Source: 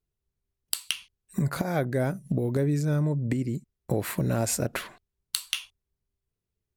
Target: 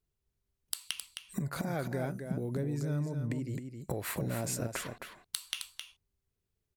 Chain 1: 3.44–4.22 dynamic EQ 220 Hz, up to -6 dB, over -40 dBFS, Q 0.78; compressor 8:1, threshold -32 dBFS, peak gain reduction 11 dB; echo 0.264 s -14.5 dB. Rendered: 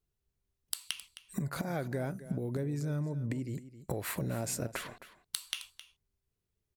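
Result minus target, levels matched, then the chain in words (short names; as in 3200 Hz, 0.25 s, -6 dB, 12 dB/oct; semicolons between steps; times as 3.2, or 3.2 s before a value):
echo-to-direct -7.5 dB
3.44–4.22 dynamic EQ 220 Hz, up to -6 dB, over -40 dBFS, Q 0.78; compressor 8:1, threshold -32 dBFS, peak gain reduction 11 dB; echo 0.264 s -7 dB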